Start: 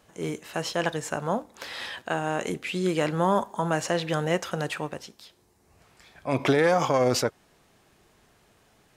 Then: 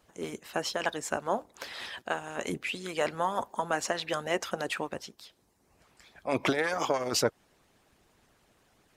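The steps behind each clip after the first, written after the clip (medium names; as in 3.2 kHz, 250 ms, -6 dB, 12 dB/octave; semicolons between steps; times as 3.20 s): harmonic-percussive split harmonic -16 dB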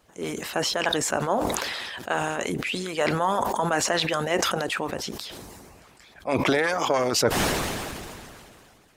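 decay stretcher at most 25 dB/s; trim +4 dB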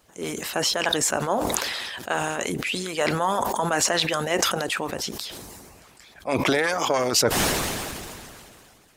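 treble shelf 4.2 kHz +6 dB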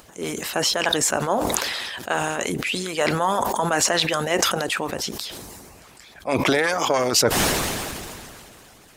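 upward compressor, threshold -44 dBFS; trim +2 dB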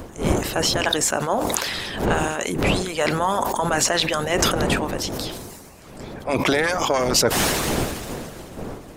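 wind noise 450 Hz -29 dBFS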